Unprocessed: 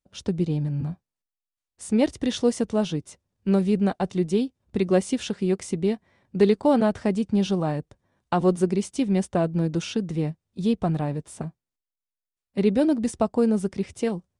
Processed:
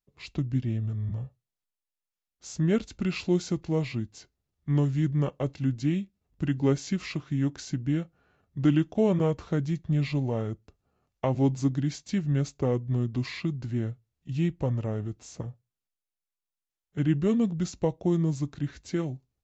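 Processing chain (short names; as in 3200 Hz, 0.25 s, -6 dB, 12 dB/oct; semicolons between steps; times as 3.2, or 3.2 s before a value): on a send at -22 dB: reverb, pre-delay 6 ms; on the sum: speed mistake 45 rpm record played at 33 rpm; gain -4 dB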